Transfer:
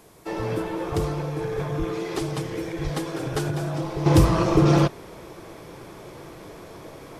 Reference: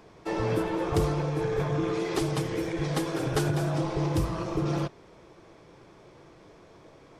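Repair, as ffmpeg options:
-filter_complex "[0:a]asplit=3[a][b][c];[a]afade=t=out:st=1.78:d=0.02[d];[b]highpass=f=140:w=0.5412,highpass=f=140:w=1.3066,afade=t=in:st=1.78:d=0.02,afade=t=out:st=1.9:d=0.02[e];[c]afade=t=in:st=1.9:d=0.02[f];[d][e][f]amix=inputs=3:normalize=0,asplit=3[g][h][i];[g]afade=t=out:st=2.83:d=0.02[j];[h]highpass=f=140:w=0.5412,highpass=f=140:w=1.3066,afade=t=in:st=2.83:d=0.02,afade=t=out:st=2.95:d=0.02[k];[i]afade=t=in:st=2.95:d=0.02[l];[j][k][l]amix=inputs=3:normalize=0,agate=range=-21dB:threshold=-35dB,asetnsamples=n=441:p=0,asendcmd='4.06 volume volume -11dB',volume=0dB"

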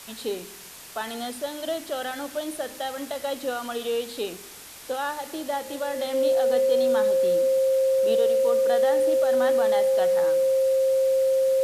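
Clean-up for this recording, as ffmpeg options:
-af "adeclick=t=4,bandreject=f=530:w=30,afftdn=nr=28:nf=-42"

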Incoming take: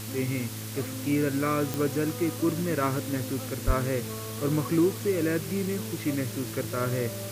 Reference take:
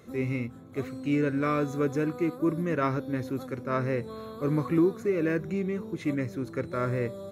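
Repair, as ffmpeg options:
-filter_complex "[0:a]adeclick=t=4,bandreject=f=108.3:t=h:w=4,bandreject=f=216.6:t=h:w=4,bandreject=f=324.9:t=h:w=4,bandreject=f=433.2:t=h:w=4,bandreject=f=541.5:t=h:w=4,asplit=3[a][b][c];[a]afade=t=out:st=3.66:d=0.02[d];[b]highpass=f=140:w=0.5412,highpass=f=140:w=1.3066,afade=t=in:st=3.66:d=0.02,afade=t=out:st=3.78:d=0.02[e];[c]afade=t=in:st=3.78:d=0.02[f];[d][e][f]amix=inputs=3:normalize=0,afwtdn=0.01"

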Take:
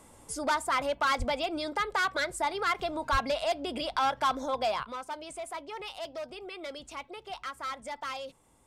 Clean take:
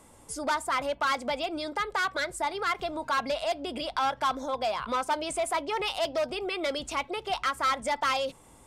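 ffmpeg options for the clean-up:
-filter_complex "[0:a]asplit=3[a][b][c];[a]afade=t=out:st=1.18:d=0.02[d];[b]highpass=f=140:w=0.5412,highpass=f=140:w=1.3066,afade=t=in:st=1.18:d=0.02,afade=t=out:st=1.3:d=0.02[e];[c]afade=t=in:st=1.3:d=0.02[f];[d][e][f]amix=inputs=3:normalize=0,asplit=3[g][h][i];[g]afade=t=out:st=3.11:d=0.02[j];[h]highpass=f=140:w=0.5412,highpass=f=140:w=1.3066,afade=t=in:st=3.11:d=0.02,afade=t=out:st=3.23:d=0.02[k];[i]afade=t=in:st=3.23:d=0.02[l];[j][k][l]amix=inputs=3:normalize=0,asetnsamples=n=441:p=0,asendcmd='4.83 volume volume 10dB',volume=0dB"

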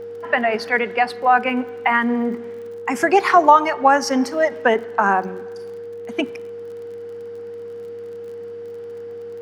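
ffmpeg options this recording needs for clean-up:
-af "adeclick=t=4,bandreject=f=99.9:t=h:w=4,bandreject=f=199.8:t=h:w=4,bandreject=f=299.7:t=h:w=4,bandreject=f=399.6:t=h:w=4,bandreject=f=470:w=30"

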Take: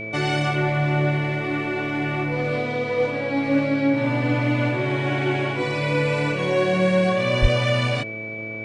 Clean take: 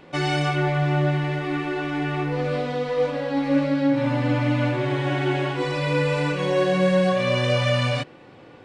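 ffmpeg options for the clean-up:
-filter_complex "[0:a]bandreject=f=109.4:t=h:w=4,bandreject=f=218.8:t=h:w=4,bandreject=f=328.2:t=h:w=4,bandreject=f=437.6:t=h:w=4,bandreject=f=547:t=h:w=4,bandreject=f=656.4:t=h:w=4,bandreject=f=2.3k:w=30,asplit=3[a][b][c];[a]afade=t=out:st=7.41:d=0.02[d];[b]highpass=f=140:w=0.5412,highpass=f=140:w=1.3066,afade=t=in:st=7.41:d=0.02,afade=t=out:st=7.53:d=0.02[e];[c]afade=t=in:st=7.53:d=0.02[f];[d][e][f]amix=inputs=3:normalize=0"

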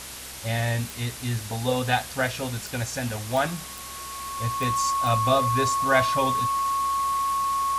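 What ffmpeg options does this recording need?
-af "adeclick=t=4,bandreject=f=64.9:t=h:w=4,bandreject=f=129.8:t=h:w=4,bandreject=f=194.7:t=h:w=4,bandreject=f=259.6:t=h:w=4,bandreject=f=324.5:t=h:w=4,bandreject=f=1.1k:w=30,afwtdn=0.014"

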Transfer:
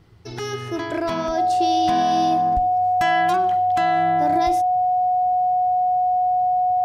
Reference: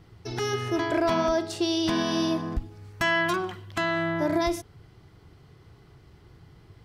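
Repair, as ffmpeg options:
-af "bandreject=f=730:w=30"

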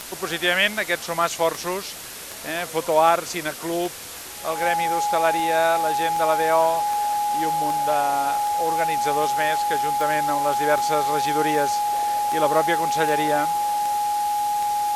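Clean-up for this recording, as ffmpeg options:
-af "adeclick=t=4,bandreject=f=830:w=30,afwtdn=0.018"

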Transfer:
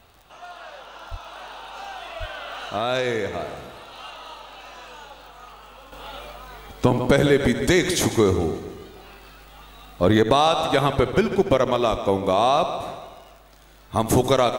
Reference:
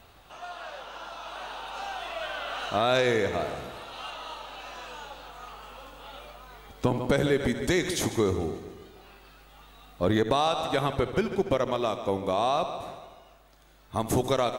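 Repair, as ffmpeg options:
-filter_complex "[0:a]adeclick=t=4,asplit=3[a][b][c];[a]afade=t=out:st=1.1:d=0.02[d];[b]highpass=f=140:w=0.5412,highpass=f=140:w=1.3066,afade=t=in:st=1.1:d=0.02,afade=t=out:st=1.22:d=0.02[e];[c]afade=t=in:st=1.22:d=0.02[f];[d][e][f]amix=inputs=3:normalize=0,asplit=3[g][h][i];[g]afade=t=out:st=2.19:d=0.02[j];[h]highpass=f=140:w=0.5412,highpass=f=140:w=1.3066,afade=t=in:st=2.19:d=0.02,afade=t=out:st=2.31:d=0.02[k];[i]afade=t=in:st=2.31:d=0.02[l];[j][k][l]amix=inputs=3:normalize=0,asplit=3[m][n][o];[m]afade=t=out:st=11.9:d=0.02[p];[n]highpass=f=140:w=0.5412,highpass=f=140:w=1.3066,afade=t=in:st=11.9:d=0.02,afade=t=out:st=12.02:d=0.02[q];[o]afade=t=in:st=12.02:d=0.02[r];[p][q][r]amix=inputs=3:normalize=0,asetnsamples=n=441:p=0,asendcmd='5.92 volume volume -7dB',volume=0dB"

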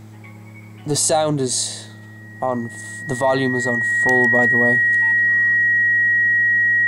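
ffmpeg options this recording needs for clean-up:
-af "bandreject=f=107.7:t=h:w=4,bandreject=f=215.4:t=h:w=4,bandreject=f=323.1:t=h:w=4,bandreject=f=1.9k:w=30"

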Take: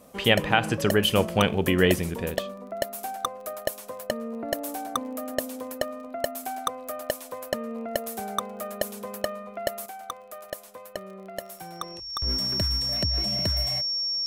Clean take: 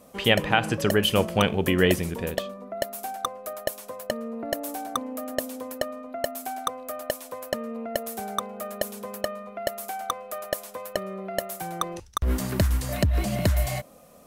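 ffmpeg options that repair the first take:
-af "adeclick=t=4,bandreject=f=5.5k:w=30,asetnsamples=n=441:p=0,asendcmd='9.86 volume volume 7dB',volume=0dB"

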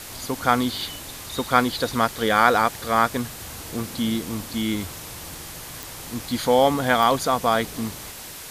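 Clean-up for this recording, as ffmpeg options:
-af "adeclick=t=4,afwtdn=0.014"

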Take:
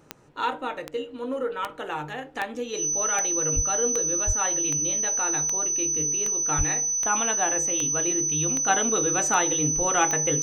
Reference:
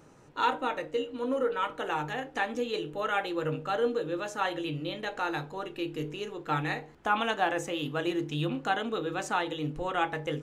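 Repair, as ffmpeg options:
-filter_complex "[0:a]adeclick=t=4,bandreject=f=6k:w=30,asplit=3[a][b][c];[a]afade=t=out:st=3.55:d=0.02[d];[b]highpass=f=140:w=0.5412,highpass=f=140:w=1.3066,afade=t=in:st=3.55:d=0.02,afade=t=out:st=3.67:d=0.02[e];[c]afade=t=in:st=3.67:d=0.02[f];[d][e][f]amix=inputs=3:normalize=0,asplit=3[g][h][i];[g]afade=t=out:st=4.26:d=0.02[j];[h]highpass=f=140:w=0.5412,highpass=f=140:w=1.3066,afade=t=in:st=4.26:d=0.02,afade=t=out:st=4.38:d=0.02[k];[i]afade=t=in:st=4.38:d=0.02[l];[j][k][l]amix=inputs=3:normalize=0,asplit=3[m][n][o];[m]afade=t=out:st=6.57:d=0.02[p];[n]highpass=f=140:w=0.5412,highpass=f=140:w=1.3066,afade=t=in:st=6.57:d=0.02,afade=t=out:st=6.69:d=0.02[q];[o]afade=t=in:st=6.69:d=0.02[r];[p][q][r]amix=inputs=3:normalize=0,asetnsamples=n=441:p=0,asendcmd='8.68 volume volume -5.5dB',volume=0dB"

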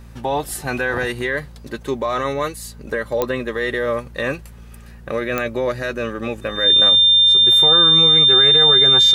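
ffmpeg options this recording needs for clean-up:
-af "adeclick=t=4,bandreject=f=57.5:t=h:w=4,bandreject=f=115:t=h:w=4,bandreject=f=172.5:t=h:w=4,bandreject=f=230:t=h:w=4,bandreject=f=3.6k:w=30"

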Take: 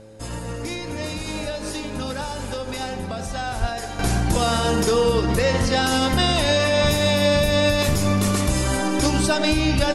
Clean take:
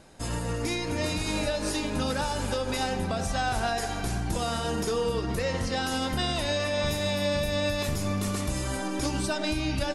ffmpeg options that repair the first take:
-filter_complex "[0:a]bandreject=f=108.8:t=h:w=4,bandreject=f=217.6:t=h:w=4,bandreject=f=326.4:t=h:w=4,bandreject=f=435.2:t=h:w=4,bandreject=f=540:w=30,asplit=3[a][b][c];[a]afade=t=out:st=3.6:d=0.02[d];[b]highpass=f=140:w=0.5412,highpass=f=140:w=1.3066,afade=t=in:st=3.6:d=0.02,afade=t=out:st=3.72:d=0.02[e];[c]afade=t=in:st=3.72:d=0.02[f];[d][e][f]amix=inputs=3:normalize=0,asetnsamples=n=441:p=0,asendcmd='3.99 volume volume -9dB',volume=0dB"

